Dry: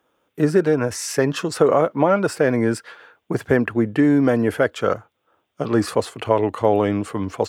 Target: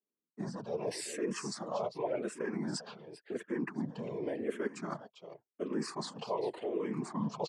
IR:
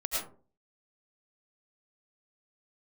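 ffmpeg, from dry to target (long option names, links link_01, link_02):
-filter_complex "[0:a]anlmdn=0.251,aecho=1:1:4.9:0.59,acrossover=split=470[link_01][link_02];[link_01]acontrast=82[link_03];[link_03][link_02]amix=inputs=2:normalize=0,alimiter=limit=-10.5dB:level=0:latency=1:release=364,areverse,acompressor=threshold=-25dB:ratio=16,areverse,afftfilt=real='hypot(re,im)*cos(2*PI*random(0))':imag='hypot(re,im)*sin(2*PI*random(1))':win_size=512:overlap=0.75,highpass=frequency=170:width=0.5412,highpass=frequency=170:width=1.3066,equalizer=frequency=180:width_type=q:width=4:gain=-4,equalizer=frequency=270:width_type=q:width=4:gain=-6,equalizer=frequency=540:width_type=q:width=4:gain=-4,equalizer=frequency=1000:width_type=q:width=4:gain=4,equalizer=frequency=1400:width_type=q:width=4:gain=-7,equalizer=frequency=4600:width_type=q:width=4:gain=4,lowpass=frequency=8800:width=0.5412,lowpass=frequency=8800:width=1.3066,aecho=1:1:397:0.224,asplit=2[link_04][link_05];[link_05]afreqshift=-0.9[link_06];[link_04][link_06]amix=inputs=2:normalize=1,volume=4.5dB"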